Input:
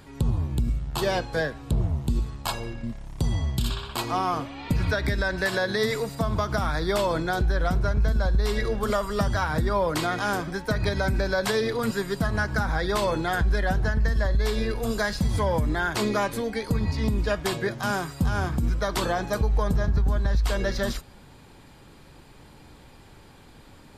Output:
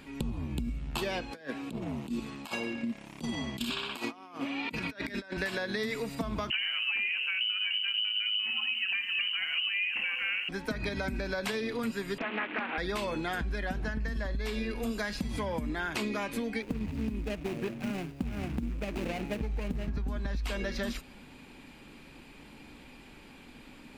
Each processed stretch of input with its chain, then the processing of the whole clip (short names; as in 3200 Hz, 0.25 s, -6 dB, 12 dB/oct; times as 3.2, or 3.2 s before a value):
1.31–5.37 HPF 190 Hz + negative-ratio compressor -34 dBFS, ratio -0.5
6.5–10.49 inverted band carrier 3000 Hz + lo-fi delay 87 ms, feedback 35%, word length 7-bit, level -14.5 dB
12.18–12.78 delta modulation 16 kbps, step -29.5 dBFS + HPF 260 Hz 24 dB/oct + Doppler distortion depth 0.76 ms
16.62–19.9 median filter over 41 samples + high shelf 4200 Hz +5.5 dB
whole clip: fifteen-band EQ 100 Hz -9 dB, 250 Hz +9 dB, 2500 Hz +11 dB; compressor, threshold -26 dBFS; gain -4 dB